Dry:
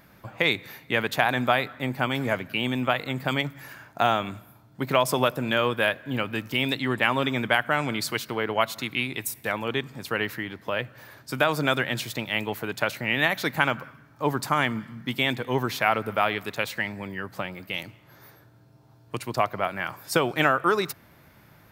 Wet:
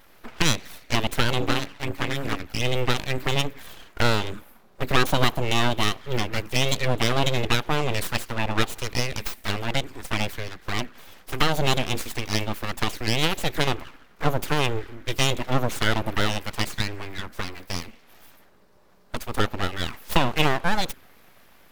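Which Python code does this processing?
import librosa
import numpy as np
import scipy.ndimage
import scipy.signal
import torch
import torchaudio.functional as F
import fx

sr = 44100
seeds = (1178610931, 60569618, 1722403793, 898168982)

y = fx.ring_mod(x, sr, carrier_hz=140.0, at=(1.4, 2.6))
y = fx.env_flanger(y, sr, rest_ms=3.8, full_db=-22.5)
y = np.abs(y)
y = F.gain(torch.from_numpy(y), 6.5).numpy()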